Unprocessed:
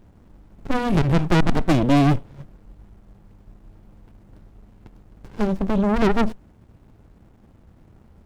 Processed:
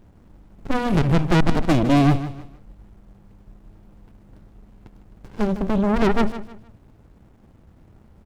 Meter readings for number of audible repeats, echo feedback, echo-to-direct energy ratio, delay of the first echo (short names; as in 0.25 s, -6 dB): 3, 30%, -12.5 dB, 0.155 s